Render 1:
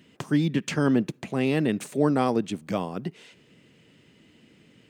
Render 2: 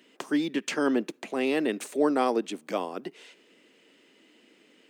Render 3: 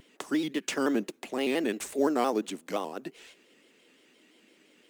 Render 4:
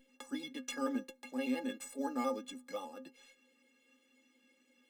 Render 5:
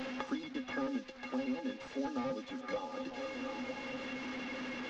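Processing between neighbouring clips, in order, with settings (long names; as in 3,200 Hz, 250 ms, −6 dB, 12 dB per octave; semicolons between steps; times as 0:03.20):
high-pass filter 280 Hz 24 dB per octave
high-shelf EQ 3,800 Hz +7.5 dB; in parallel at −10.5 dB: sample-rate reduction 6,600 Hz; on the sum: pitch modulation by a square or saw wave square 5.8 Hz, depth 100 cents; level −4.5 dB
stiff-string resonator 250 Hz, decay 0.21 s, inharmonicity 0.03; level +2.5 dB
linear delta modulator 32 kbit/s, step −52 dBFS; echo through a band-pass that steps 237 ms, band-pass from 2,700 Hz, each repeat −0.7 octaves, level −8 dB; multiband upward and downward compressor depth 100%; level +1 dB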